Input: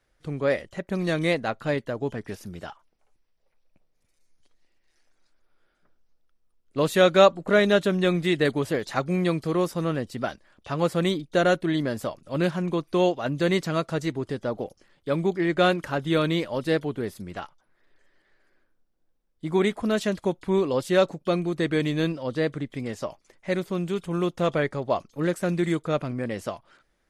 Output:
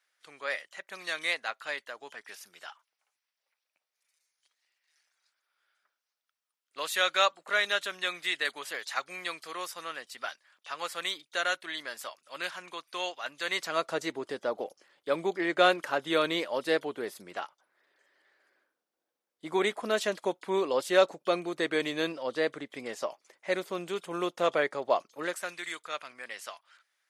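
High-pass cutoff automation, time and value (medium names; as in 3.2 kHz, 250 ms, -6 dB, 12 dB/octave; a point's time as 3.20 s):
13.41 s 1.3 kHz
13.91 s 480 Hz
25.10 s 480 Hz
25.57 s 1.4 kHz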